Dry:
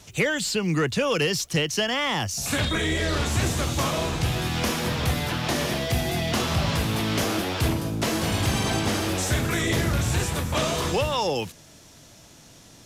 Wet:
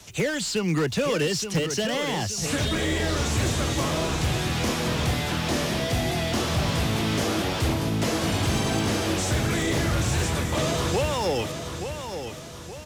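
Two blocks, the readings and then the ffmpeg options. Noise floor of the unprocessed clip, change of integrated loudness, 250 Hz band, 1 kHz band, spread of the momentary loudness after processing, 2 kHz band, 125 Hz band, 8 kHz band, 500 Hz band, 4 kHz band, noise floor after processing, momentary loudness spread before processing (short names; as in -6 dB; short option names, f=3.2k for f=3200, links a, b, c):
-50 dBFS, -0.5 dB, +0.5 dB, -1.0 dB, 3 LU, -2.0 dB, 0.0 dB, 0.0 dB, +0.5 dB, -1.0 dB, -37 dBFS, 2 LU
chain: -filter_complex "[0:a]acrossover=split=140|620|7300[a][b][c][d];[c]volume=32dB,asoftclip=hard,volume=-32dB[e];[a][b][e][d]amix=inputs=4:normalize=0,acrossover=split=8400[f][g];[g]acompressor=threshold=-49dB:ratio=4:attack=1:release=60[h];[f][h]amix=inputs=2:normalize=0,aecho=1:1:874|1748|2622|3496|4370:0.376|0.162|0.0695|0.0299|0.0128,aeval=exprs='0.141*(abs(mod(val(0)/0.141+3,4)-2)-1)':c=same,lowshelf=f=440:g=-3,volume=2.5dB"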